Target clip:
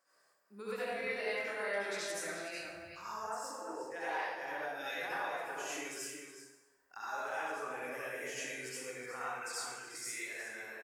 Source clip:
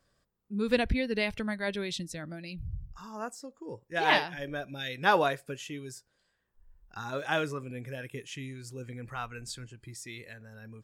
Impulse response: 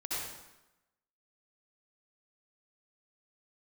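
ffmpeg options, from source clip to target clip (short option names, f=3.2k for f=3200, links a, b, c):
-filter_complex "[0:a]highpass=660,equalizer=f=3.5k:t=o:w=0.77:g=-10.5,acompressor=threshold=-43dB:ratio=10,asettb=1/sr,asplit=3[a][b][c];[a]atrim=end=0.754[d];[b]atrim=start=0.75:end=1.86,asetpts=PTS-STARTPTS,afade=t=in:d=0.004:c=qsin,afade=t=out:st=1.106:d=0.004:c=qsin,asplit=2[e][f];[f]adelay=25,volume=-2.5dB[g];[e][g]amix=inputs=2:normalize=0,atrim=end_sample=48951[h];[c]atrim=start=1.856[i];[d][h]acrossfade=d=0.004:c1=hsin:c2=qsin[j];[j][i]acrossfade=d=0.004:c1=qsin:c2=hsin,asplit=2[k][l];[l]adelay=367.3,volume=-6dB,highshelf=f=4k:g=-8.27[m];[k][m]amix=inputs=2:normalize=0[n];[1:a]atrim=start_sample=2205[o];[n][o]afir=irnorm=-1:irlink=0,volume=4dB"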